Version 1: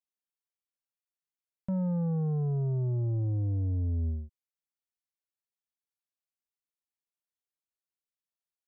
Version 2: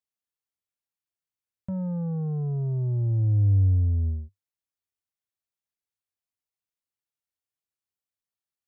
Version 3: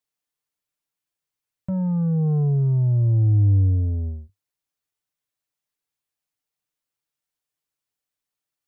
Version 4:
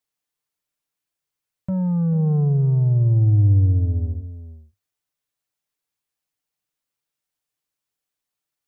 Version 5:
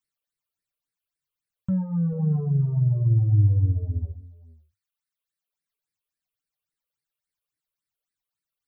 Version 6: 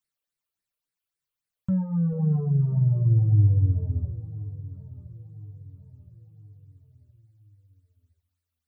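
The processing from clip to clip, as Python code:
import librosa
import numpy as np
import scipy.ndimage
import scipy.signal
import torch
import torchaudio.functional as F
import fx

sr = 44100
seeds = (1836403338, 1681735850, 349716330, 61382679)

y1 = fx.peak_eq(x, sr, hz=98.0, db=11.5, octaves=0.52)
y1 = y1 * 10.0 ** (-1.0 / 20.0)
y2 = y1 + 0.54 * np.pad(y1, (int(6.7 * sr / 1000.0), 0))[:len(y1)]
y2 = y2 * 10.0 ** (4.5 / 20.0)
y3 = y2 + 10.0 ** (-13.5 / 20.0) * np.pad(y2, (int(438 * sr / 1000.0), 0))[:len(y2)]
y3 = y3 * 10.0 ** (1.5 / 20.0)
y4 = fx.dereverb_blind(y3, sr, rt60_s=0.93)
y4 = fx.phaser_stages(y4, sr, stages=8, low_hz=220.0, high_hz=1000.0, hz=3.6, feedback_pct=25)
y5 = fx.echo_feedback(y4, sr, ms=1019, feedback_pct=44, wet_db=-17)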